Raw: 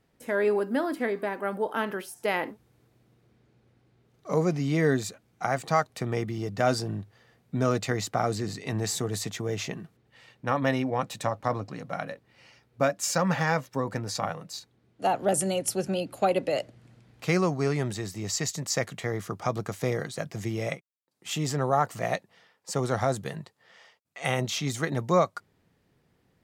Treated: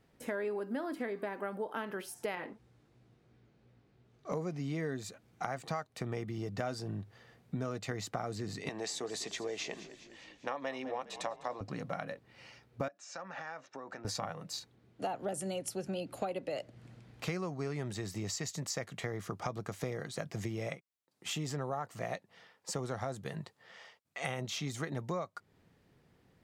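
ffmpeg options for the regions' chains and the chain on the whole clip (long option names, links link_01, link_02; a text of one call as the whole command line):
ffmpeg -i in.wav -filter_complex "[0:a]asettb=1/sr,asplit=3[link_01][link_02][link_03];[link_01]atrim=end=2.354[link_04];[link_02]atrim=start=2.35:end=4.32,asetpts=PTS-STARTPTS,afade=type=in:duration=0.004:curve=qsin,afade=type=out:start_time=1.966:duration=0.004:curve=qsin,lowpass=8600,flanger=delay=15.5:depth=5.2:speed=2.9[link_05];[link_03]atrim=start=4.316[link_06];[link_04][link_05]acrossfade=duration=0.004:curve1=hsin:curve2=qsin[link_07];[link_07][link_06]acrossfade=duration=0.004:curve1=qsin:curve2=hsin,asettb=1/sr,asplit=3[link_08][link_09][link_10];[link_08]atrim=end=8.694[link_11];[link_09]atrim=start=8.69:end=11.61,asetpts=PTS-STARTPTS,afade=type=in:duration=0.004:curve=qsin,afade=type=out:start_time=2.916:duration=0.004:curve=qsin,highpass=420,lowpass=7500,equalizer=frequency=1400:width=2.6:gain=-5.5,asplit=7[link_12][link_13][link_14][link_15][link_16][link_17][link_18];[link_13]adelay=202,afreqshift=-35,volume=-18dB[link_19];[link_14]adelay=404,afreqshift=-70,volume=-22.2dB[link_20];[link_15]adelay=606,afreqshift=-105,volume=-26.3dB[link_21];[link_16]adelay=808,afreqshift=-140,volume=-30.5dB[link_22];[link_17]adelay=1010,afreqshift=-175,volume=-34.6dB[link_23];[link_18]adelay=1212,afreqshift=-210,volume=-38.8dB[link_24];[link_12][link_19][link_20][link_21][link_22][link_23][link_24]amix=inputs=7:normalize=0,atrim=end_sample=128772[link_25];[link_10]atrim=start=11.606[link_26];[link_11][link_25]acrossfade=duration=0.004:curve1=hsin:curve2=qsin[link_27];[link_27][link_26]acrossfade=duration=0.004:curve1=qsin:curve2=hsin,asettb=1/sr,asplit=3[link_28][link_29][link_30];[link_28]atrim=end=12.884[link_31];[link_29]atrim=start=12.88:end=14.05,asetpts=PTS-STARTPTS,afade=type=in:duration=0.004:curve=qsin,afade=type=out:start_time=1.166:duration=0.004:curve=qsin,acompressor=threshold=-33dB:ratio=16:attack=3.2:release=140:knee=1:detection=peak,highpass=450,equalizer=frequency=480:width_type=q:width=4:gain=-7,equalizer=frequency=1000:width_type=q:width=4:gain=-6,equalizer=frequency=2100:width_type=q:width=4:gain=-6,equalizer=frequency=3200:width_type=q:width=4:gain=-8,equalizer=frequency=4600:width_type=q:width=4:gain=-9,lowpass=frequency=5700:width=0.5412,lowpass=frequency=5700:width=1.3066[link_32];[link_30]atrim=start=14.046[link_33];[link_31][link_32]acrossfade=duration=0.004:curve1=hsin:curve2=qsin[link_34];[link_34][link_33]acrossfade=duration=0.004:curve1=qsin:curve2=hsin,acompressor=threshold=-36dB:ratio=5,highshelf=frequency=7900:gain=-4.5,volume=1dB" out.wav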